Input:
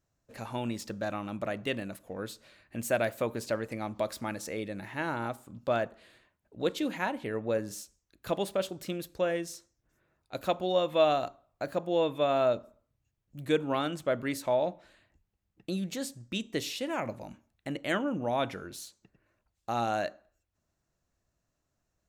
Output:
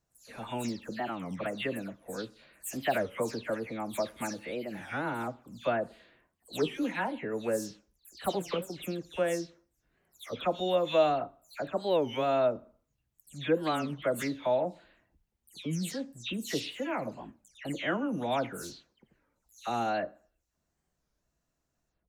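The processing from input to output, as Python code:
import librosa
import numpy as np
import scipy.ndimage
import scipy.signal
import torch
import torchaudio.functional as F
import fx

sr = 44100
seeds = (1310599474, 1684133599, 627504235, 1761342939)

y = fx.spec_delay(x, sr, highs='early', ms=193)
y = fx.record_warp(y, sr, rpm=33.33, depth_cents=250.0)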